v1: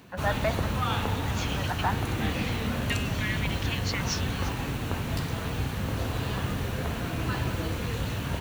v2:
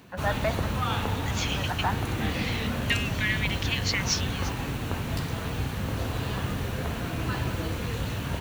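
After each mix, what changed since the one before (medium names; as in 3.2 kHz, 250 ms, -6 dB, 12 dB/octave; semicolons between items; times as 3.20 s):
second voice +5.5 dB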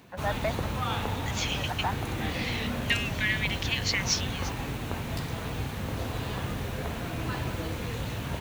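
reverb: off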